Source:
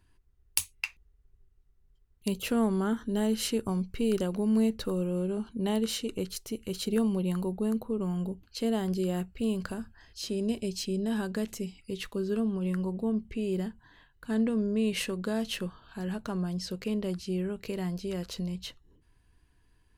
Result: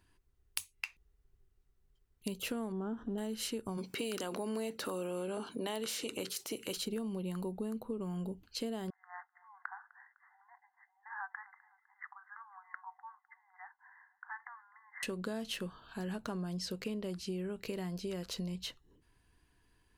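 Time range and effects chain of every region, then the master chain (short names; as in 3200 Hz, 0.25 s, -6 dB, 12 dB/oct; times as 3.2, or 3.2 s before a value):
2.72–3.18 G.711 law mismatch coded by mu + running mean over 20 samples + mismatched tape noise reduction encoder only
3.77–6.76 spectral limiter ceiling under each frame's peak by 13 dB + HPF 190 Hz + transient shaper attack 0 dB, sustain +6 dB
8.9–15.03 brick-wall FIR band-pass 730–2100 Hz + feedback echo 0.253 s, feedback 47%, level -22 dB
whole clip: low shelf 140 Hz -7.5 dB; compressor, threshold -35 dBFS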